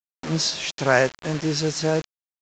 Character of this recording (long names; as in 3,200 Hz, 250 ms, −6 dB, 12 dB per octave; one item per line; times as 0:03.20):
a quantiser's noise floor 6 bits, dither none
mu-law